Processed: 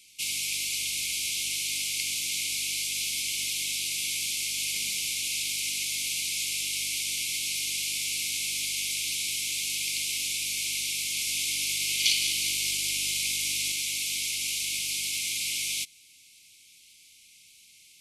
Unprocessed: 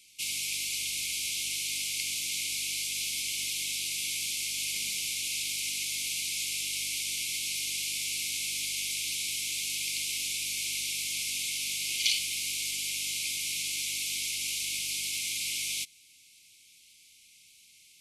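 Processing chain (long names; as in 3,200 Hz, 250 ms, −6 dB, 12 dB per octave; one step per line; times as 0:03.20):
0:11.06–0:13.72: feedback delay that plays each chunk backwards 101 ms, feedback 79%, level −7.5 dB
level +2.5 dB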